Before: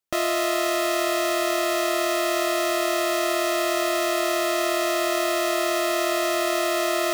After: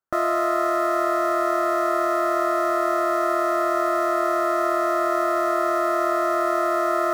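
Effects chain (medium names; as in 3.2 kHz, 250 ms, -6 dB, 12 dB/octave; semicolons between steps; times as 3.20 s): resonant high shelf 2 kHz -11 dB, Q 3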